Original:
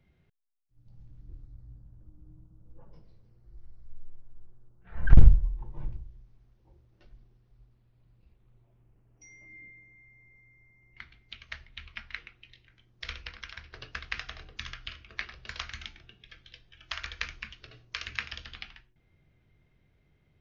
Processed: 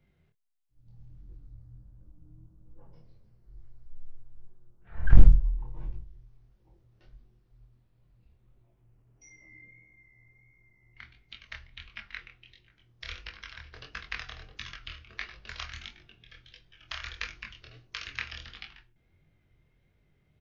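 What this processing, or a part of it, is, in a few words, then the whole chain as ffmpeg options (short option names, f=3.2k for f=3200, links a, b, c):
double-tracked vocal: -filter_complex "[0:a]asplit=2[a][b];[b]adelay=25,volume=-12.5dB[c];[a][c]amix=inputs=2:normalize=0,flanger=delay=19:depth=7.8:speed=1.5,volume=1.5dB"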